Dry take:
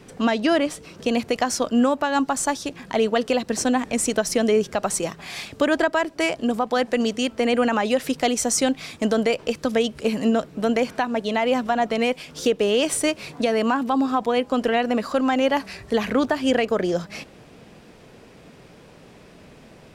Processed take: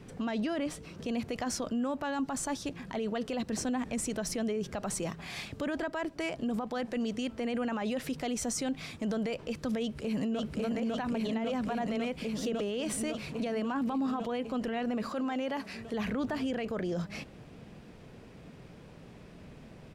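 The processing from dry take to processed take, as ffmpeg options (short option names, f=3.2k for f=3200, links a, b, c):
-filter_complex "[0:a]asplit=2[a][b];[b]afade=t=in:st=9.79:d=0.01,afade=t=out:st=10.58:d=0.01,aecho=0:1:550|1100|1650|2200|2750|3300|3850|4400|4950|5500|6050|6600:1|0.75|0.5625|0.421875|0.316406|0.237305|0.177979|0.133484|0.100113|0.0750847|0.0563135|0.0422351[c];[a][c]amix=inputs=2:normalize=0,asettb=1/sr,asplit=3[d][e][f];[d]atrim=end=15.094[g];[e]atrim=start=15.09:end=15.94,asetpts=PTS-STARTPTS,afade=t=in:d=0.004:c=qsin,afade=t=out:st=0.846:d=0.004:c=qsin,highpass=f=200:p=1[h];[f]atrim=start=15.936[i];[g][h]acrossfade=d=0.004:c1=hsin:c2=qsin[j];[j][i]acrossfade=d=0.004:c1=qsin:c2=hsin,bass=f=250:g=7,treble=f=4k:g=-3,alimiter=limit=-19dB:level=0:latency=1:release=28,volume=-6.5dB"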